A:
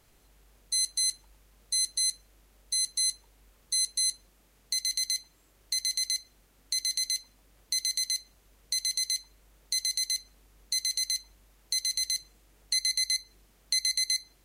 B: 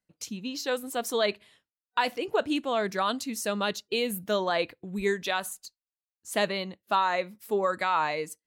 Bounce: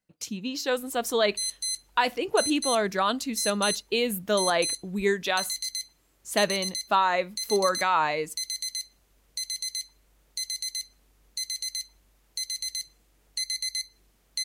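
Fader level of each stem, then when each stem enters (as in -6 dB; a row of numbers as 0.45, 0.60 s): -3.0, +2.5 dB; 0.65, 0.00 s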